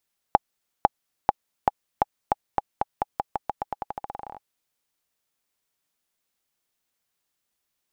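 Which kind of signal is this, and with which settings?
bouncing ball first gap 0.50 s, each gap 0.88, 823 Hz, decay 26 ms -1.5 dBFS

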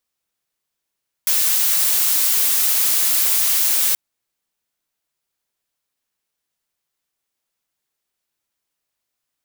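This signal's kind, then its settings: noise blue, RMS -17 dBFS 2.68 s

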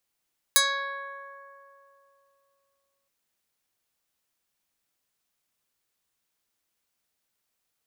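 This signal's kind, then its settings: plucked string C#5, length 2.52 s, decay 3.17 s, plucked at 0.2, medium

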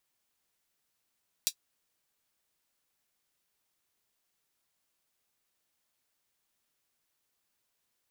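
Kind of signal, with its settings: closed hi-hat, high-pass 4100 Hz, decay 0.08 s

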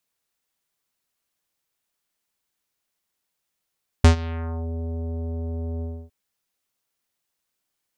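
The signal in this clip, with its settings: synth note square E2 24 dB/oct, low-pass 600 Hz, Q 1, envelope 4 oct, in 0.63 s, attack 4 ms, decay 0.11 s, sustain -20 dB, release 0.28 s, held 1.78 s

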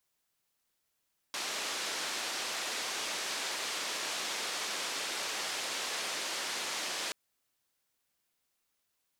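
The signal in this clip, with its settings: noise band 330–5900 Hz, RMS -36.5 dBFS 5.78 s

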